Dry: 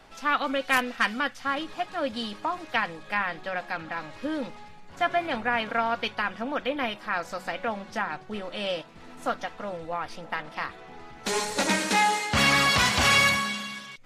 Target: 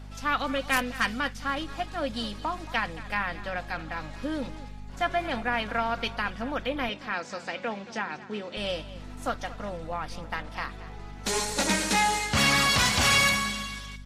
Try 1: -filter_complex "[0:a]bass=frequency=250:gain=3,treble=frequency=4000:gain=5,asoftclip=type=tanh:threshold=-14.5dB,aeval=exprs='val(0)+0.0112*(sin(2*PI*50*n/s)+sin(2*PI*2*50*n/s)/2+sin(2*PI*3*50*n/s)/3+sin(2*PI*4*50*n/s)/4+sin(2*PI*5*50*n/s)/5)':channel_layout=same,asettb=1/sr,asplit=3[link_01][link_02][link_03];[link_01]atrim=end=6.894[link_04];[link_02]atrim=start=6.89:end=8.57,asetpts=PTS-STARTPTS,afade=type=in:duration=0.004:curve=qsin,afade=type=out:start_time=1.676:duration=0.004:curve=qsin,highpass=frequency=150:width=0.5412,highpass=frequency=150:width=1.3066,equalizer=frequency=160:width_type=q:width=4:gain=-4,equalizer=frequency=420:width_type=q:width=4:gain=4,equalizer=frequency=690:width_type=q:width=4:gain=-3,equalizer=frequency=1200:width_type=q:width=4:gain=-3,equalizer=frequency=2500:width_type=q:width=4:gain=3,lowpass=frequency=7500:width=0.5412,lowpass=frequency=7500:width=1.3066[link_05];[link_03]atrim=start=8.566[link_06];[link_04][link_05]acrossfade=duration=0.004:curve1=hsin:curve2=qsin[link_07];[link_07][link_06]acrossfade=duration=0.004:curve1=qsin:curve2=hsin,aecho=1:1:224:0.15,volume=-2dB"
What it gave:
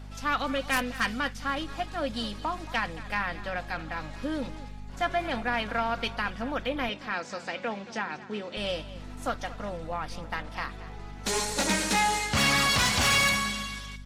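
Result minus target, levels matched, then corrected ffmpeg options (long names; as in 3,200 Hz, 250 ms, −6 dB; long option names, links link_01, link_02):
soft clipping: distortion +11 dB
-filter_complex "[0:a]bass=frequency=250:gain=3,treble=frequency=4000:gain=5,asoftclip=type=tanh:threshold=-7.5dB,aeval=exprs='val(0)+0.0112*(sin(2*PI*50*n/s)+sin(2*PI*2*50*n/s)/2+sin(2*PI*3*50*n/s)/3+sin(2*PI*4*50*n/s)/4+sin(2*PI*5*50*n/s)/5)':channel_layout=same,asettb=1/sr,asplit=3[link_01][link_02][link_03];[link_01]atrim=end=6.894[link_04];[link_02]atrim=start=6.89:end=8.57,asetpts=PTS-STARTPTS,afade=type=in:duration=0.004:curve=qsin,afade=type=out:start_time=1.676:duration=0.004:curve=qsin,highpass=frequency=150:width=0.5412,highpass=frequency=150:width=1.3066,equalizer=frequency=160:width_type=q:width=4:gain=-4,equalizer=frequency=420:width_type=q:width=4:gain=4,equalizer=frequency=690:width_type=q:width=4:gain=-3,equalizer=frequency=1200:width_type=q:width=4:gain=-3,equalizer=frequency=2500:width_type=q:width=4:gain=3,lowpass=frequency=7500:width=0.5412,lowpass=frequency=7500:width=1.3066[link_05];[link_03]atrim=start=8.566[link_06];[link_04][link_05]acrossfade=duration=0.004:curve1=hsin:curve2=qsin[link_07];[link_07][link_06]acrossfade=duration=0.004:curve1=qsin:curve2=hsin,aecho=1:1:224:0.15,volume=-2dB"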